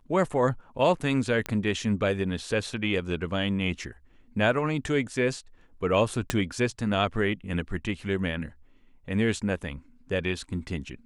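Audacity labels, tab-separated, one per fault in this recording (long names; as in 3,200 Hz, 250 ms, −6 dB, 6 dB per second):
1.460000	1.460000	click −15 dBFS
6.300000	6.300000	click −10 dBFS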